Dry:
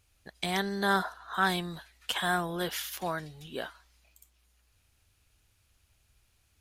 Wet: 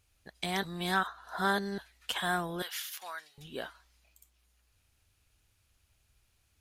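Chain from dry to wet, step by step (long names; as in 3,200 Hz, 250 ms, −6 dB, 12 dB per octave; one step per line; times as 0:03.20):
0:00.63–0:01.78: reverse
0:02.62–0:03.38: high-pass filter 1,200 Hz 12 dB per octave
level −2.5 dB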